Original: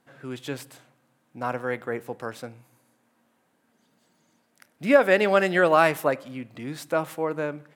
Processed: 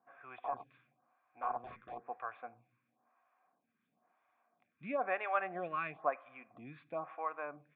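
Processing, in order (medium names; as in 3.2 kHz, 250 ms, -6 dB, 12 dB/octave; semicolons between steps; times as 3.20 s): FFT filter 220 Hz 0 dB, 930 Hz -12 dB, 1.6 kHz +14 dB; in parallel at 0 dB: compression, threshold -28 dBFS, peak gain reduction 20 dB; 0.38–2.09 s: on the sum: integer overflow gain 16.5 dB; cascade formant filter a; lamp-driven phase shifter 1 Hz; trim +7 dB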